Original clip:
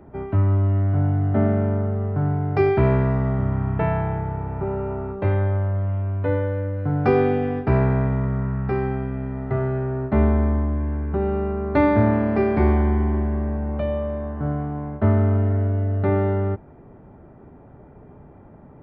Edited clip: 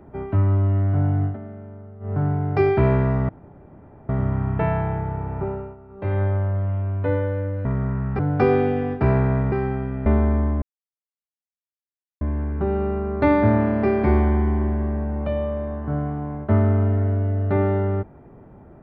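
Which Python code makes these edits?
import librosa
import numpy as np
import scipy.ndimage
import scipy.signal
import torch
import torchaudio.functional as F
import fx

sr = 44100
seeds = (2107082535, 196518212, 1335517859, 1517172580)

y = fx.edit(x, sr, fx.fade_down_up(start_s=1.24, length_s=0.89, db=-17.5, fade_s=0.13),
    fx.insert_room_tone(at_s=3.29, length_s=0.8),
    fx.fade_down_up(start_s=4.63, length_s=0.79, db=-16.5, fade_s=0.33),
    fx.move(start_s=8.18, length_s=0.54, to_s=6.85),
    fx.cut(start_s=9.26, length_s=0.92),
    fx.insert_silence(at_s=10.74, length_s=1.59), tone=tone)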